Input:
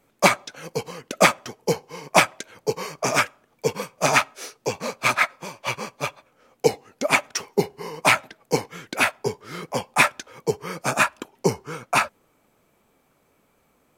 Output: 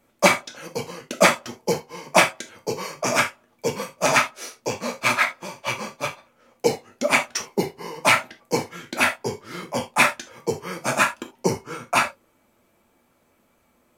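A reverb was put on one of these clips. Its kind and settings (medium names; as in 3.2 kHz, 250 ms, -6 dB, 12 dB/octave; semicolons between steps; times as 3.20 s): gated-style reverb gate 100 ms falling, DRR 3.5 dB; trim -1 dB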